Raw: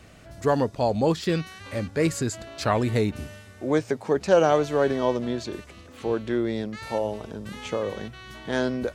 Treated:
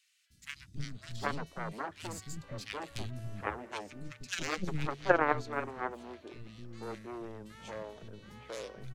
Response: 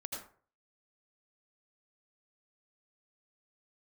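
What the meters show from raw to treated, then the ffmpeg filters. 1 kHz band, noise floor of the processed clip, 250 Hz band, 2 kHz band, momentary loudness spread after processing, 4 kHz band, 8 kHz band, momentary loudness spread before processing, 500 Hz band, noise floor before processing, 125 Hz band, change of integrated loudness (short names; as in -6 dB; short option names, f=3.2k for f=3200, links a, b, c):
-7.5 dB, -62 dBFS, -16.0 dB, -4.0 dB, 16 LU, -8.5 dB, -9.0 dB, 15 LU, -15.0 dB, -48 dBFS, -12.0 dB, -12.0 dB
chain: -filter_complex "[0:a]aeval=exprs='0.473*(cos(1*acos(clip(val(0)/0.473,-1,1)))-cos(1*PI/2))+0.188*(cos(3*acos(clip(val(0)/0.473,-1,1)))-cos(3*PI/2))+0.0075*(cos(8*acos(clip(val(0)/0.473,-1,1)))-cos(8*PI/2))':c=same,asplit=2[a][b];[b]aeval=exprs='0.158*(abs(mod(val(0)/0.158+3,4)-2)-1)':c=same,volume=-11dB[c];[a][c]amix=inputs=2:normalize=0,bandreject=f=50:t=h:w=6,bandreject=f=100:t=h:w=6,acrossover=split=250|2200[d][e][f];[d]adelay=300[g];[e]adelay=770[h];[g][h][f]amix=inputs=3:normalize=0"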